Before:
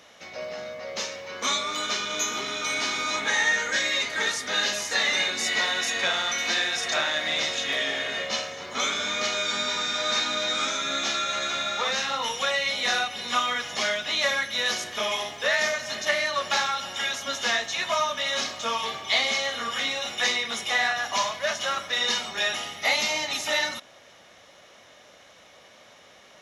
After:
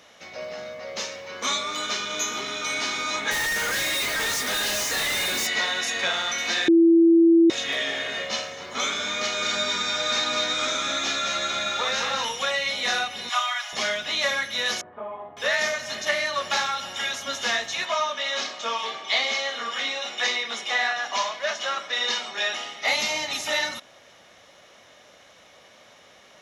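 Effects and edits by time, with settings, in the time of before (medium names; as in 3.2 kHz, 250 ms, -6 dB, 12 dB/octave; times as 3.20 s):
3.31–5.47 s: companded quantiser 2-bit
6.68–7.50 s: bleep 333 Hz -12 dBFS
9.18–12.25 s: delay 212 ms -4.5 dB
13.29–13.73 s: brick-wall FIR high-pass 580 Hz
14.81–15.37 s: four-pole ladder low-pass 1.3 kHz, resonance 25%
17.85–22.88 s: band-pass 270–6400 Hz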